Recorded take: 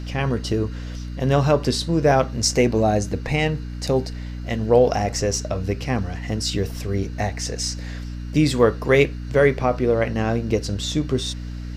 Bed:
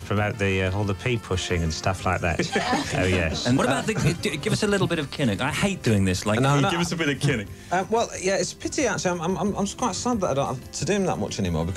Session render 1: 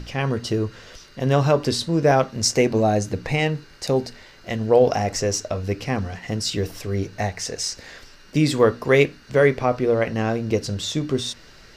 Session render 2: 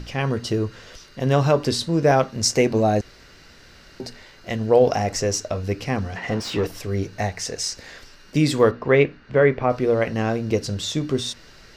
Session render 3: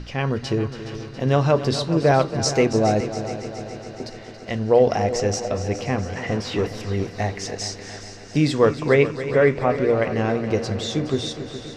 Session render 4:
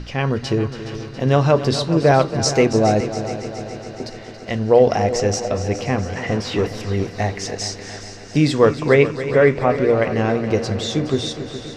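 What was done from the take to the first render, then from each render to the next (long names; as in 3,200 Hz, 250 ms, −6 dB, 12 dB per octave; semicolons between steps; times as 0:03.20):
mains-hum notches 60/120/180/240/300 Hz
0:03.01–0:04.00: fill with room tone; 0:06.16–0:06.67: mid-hump overdrive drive 21 dB, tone 1,100 Hz, clips at −13 dBFS; 0:08.71–0:09.70: low-pass filter 2,600 Hz
high-frequency loss of the air 57 metres; echo machine with several playback heads 139 ms, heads second and third, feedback 63%, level −13 dB
level +3 dB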